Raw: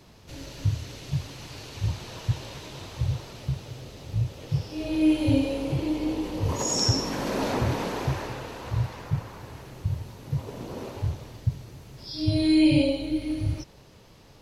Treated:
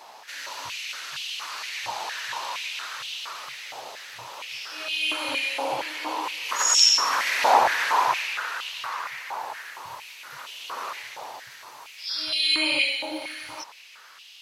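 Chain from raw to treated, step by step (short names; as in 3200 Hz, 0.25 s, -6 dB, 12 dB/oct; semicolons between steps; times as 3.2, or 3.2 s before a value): stepped high-pass 4.3 Hz 820–2900 Hz; gain +7 dB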